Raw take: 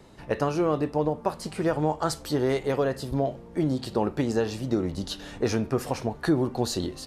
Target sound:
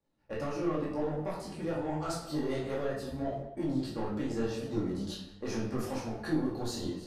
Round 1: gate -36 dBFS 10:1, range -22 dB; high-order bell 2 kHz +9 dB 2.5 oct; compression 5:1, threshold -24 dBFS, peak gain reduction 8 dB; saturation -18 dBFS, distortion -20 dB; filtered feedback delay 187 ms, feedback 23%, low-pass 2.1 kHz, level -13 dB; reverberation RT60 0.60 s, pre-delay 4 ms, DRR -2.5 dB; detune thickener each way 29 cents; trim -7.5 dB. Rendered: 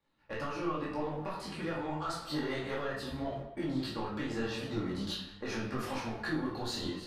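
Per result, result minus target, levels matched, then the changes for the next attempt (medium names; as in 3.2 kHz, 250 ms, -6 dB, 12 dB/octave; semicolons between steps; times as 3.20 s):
compression: peak gain reduction +8 dB; 2 kHz band +7.0 dB
remove: compression 5:1, threshold -24 dBFS, peak gain reduction 8 dB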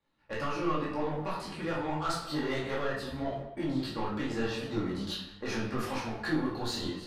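2 kHz band +7.0 dB
remove: high-order bell 2 kHz +9 dB 2.5 oct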